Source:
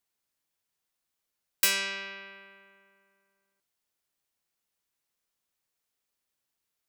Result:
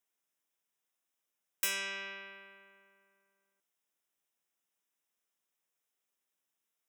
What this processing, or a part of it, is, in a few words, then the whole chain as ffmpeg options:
PA system with an anti-feedback notch: -af "highpass=180,asuperstop=centerf=4400:order=4:qfactor=3.9,alimiter=limit=0.168:level=0:latency=1:release=449,volume=0.75"

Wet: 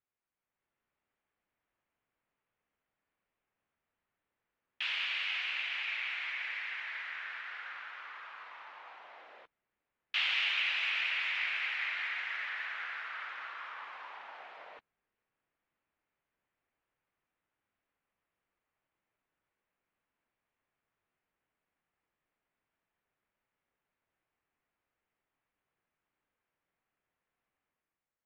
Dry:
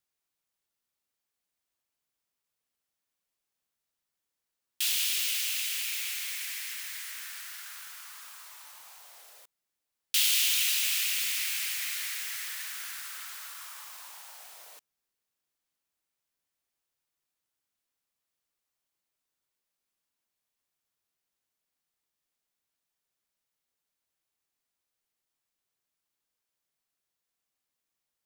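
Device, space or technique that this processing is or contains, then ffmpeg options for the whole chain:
action camera in a waterproof case: -af "lowpass=f=2400:w=0.5412,lowpass=f=2400:w=1.3066,dynaudnorm=f=100:g=11:m=2.82,volume=0.75" -ar 48000 -c:a aac -b:a 48k

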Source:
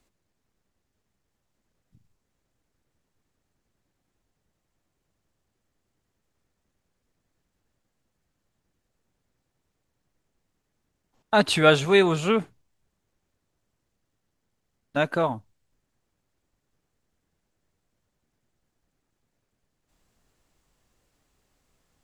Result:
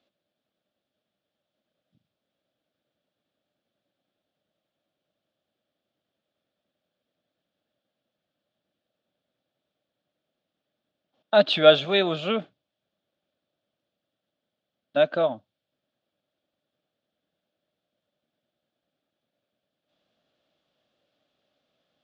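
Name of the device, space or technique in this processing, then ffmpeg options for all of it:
kitchen radio: -af "highpass=210,equalizer=f=410:t=q:w=4:g=-6,equalizer=f=600:t=q:w=4:g=10,equalizer=f=970:t=q:w=4:g=-10,equalizer=f=2000:t=q:w=4:g=-6,equalizer=f=3400:t=q:w=4:g=8,lowpass=f=4400:w=0.5412,lowpass=f=4400:w=1.3066,volume=0.841"

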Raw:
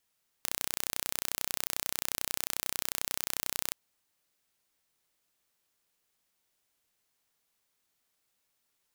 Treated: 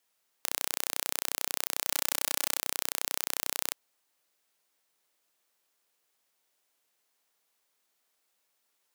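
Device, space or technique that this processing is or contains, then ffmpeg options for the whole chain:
filter by subtraction: -filter_complex "[0:a]asplit=2[s0][s1];[s1]lowpass=540,volume=-1[s2];[s0][s2]amix=inputs=2:normalize=0,asettb=1/sr,asplit=3[s3][s4][s5];[s3]atrim=end=1.874[s6];[s4]atrim=start=1.87:end=2.6,asetpts=PTS-STARTPTS,afade=t=in:d=0.004:c=qsin,afade=t=out:st=0.726:d=0.004:c=qsin,aecho=1:1:3.5:0.84,atrim=end_sample=32193[s7];[s5]atrim=start=2.596[s8];[s6][s7]acrossfade=d=0.004:c1=hsin:c2=qsin[s9];[s9][s8]acrossfade=d=0.004:c1=qsin:c2=hsin,volume=1.19"

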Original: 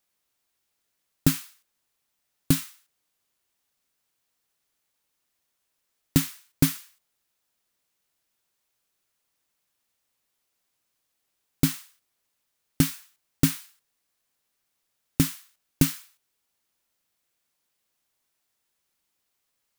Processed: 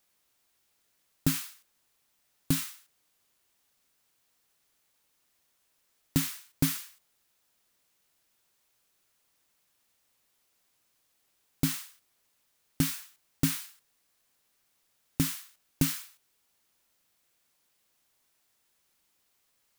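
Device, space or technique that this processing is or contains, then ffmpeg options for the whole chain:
stacked limiters: -af "alimiter=limit=0.299:level=0:latency=1:release=191,alimiter=limit=0.168:level=0:latency=1:release=102,volume=1.68"

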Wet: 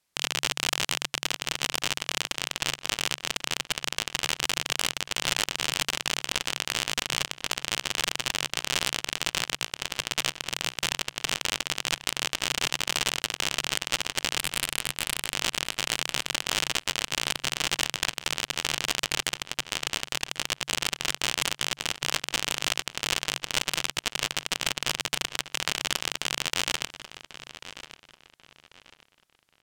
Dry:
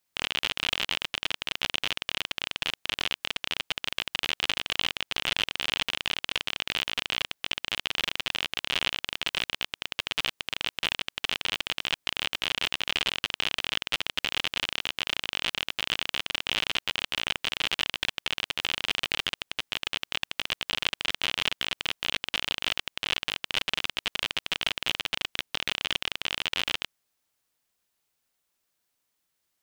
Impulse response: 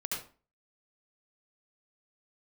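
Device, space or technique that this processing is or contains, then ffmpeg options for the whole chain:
overflowing digital effects unit: -filter_complex "[0:a]asettb=1/sr,asplit=3[s0][s1][s2];[s0]atrim=end=14.384[s3];[s1]atrim=start=14.38:end=15.34,asetpts=PTS-STARTPTS,afade=t=in:d=0.004:c=qsin,afade=t=out:st=0.956:d=0.004:c=qsin,highpass=f=110:p=1[s4];[s2]atrim=start=15.336[s5];[s3][s4]acrossfade=d=0.004:c1=hsin:c2=qsin[s6];[s6][s5]acrossfade=d=0.004:c1=qsin:c2=hsin,aeval=exprs='(mod(4.73*val(0)+1,2)-1)/4.73':c=same,lowpass=12000,equalizer=f=140:t=o:w=0.2:g=6.5,asplit=2[s7][s8];[s8]adelay=1091,lowpass=f=4700:p=1,volume=0.224,asplit=2[s9][s10];[s10]adelay=1091,lowpass=f=4700:p=1,volume=0.32,asplit=2[s11][s12];[s12]adelay=1091,lowpass=f=4700:p=1,volume=0.32[s13];[s7][s9][s11][s13]amix=inputs=4:normalize=0,volume=1.5"

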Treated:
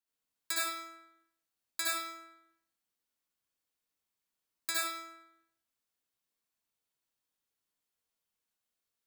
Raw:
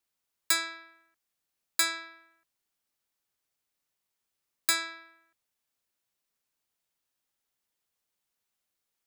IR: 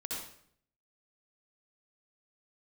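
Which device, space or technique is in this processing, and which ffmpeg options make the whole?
bathroom: -filter_complex "[1:a]atrim=start_sample=2205[s0];[0:a][s0]afir=irnorm=-1:irlink=0,volume=0.531"

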